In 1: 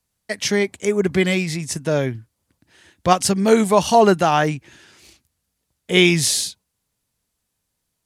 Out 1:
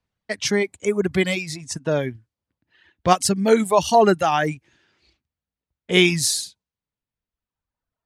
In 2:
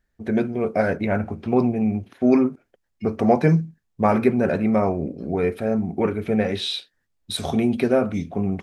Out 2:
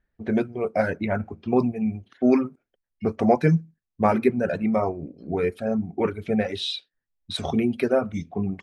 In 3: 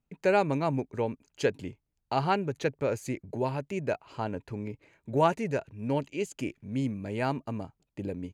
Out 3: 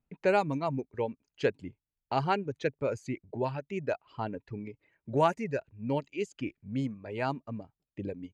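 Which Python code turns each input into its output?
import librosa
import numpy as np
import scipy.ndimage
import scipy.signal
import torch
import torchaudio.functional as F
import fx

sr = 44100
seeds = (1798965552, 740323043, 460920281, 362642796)

y = fx.env_lowpass(x, sr, base_hz=3000.0, full_db=-18.0)
y = fx.dereverb_blind(y, sr, rt60_s=1.7)
y = y * 10.0 ** (-1.0 / 20.0)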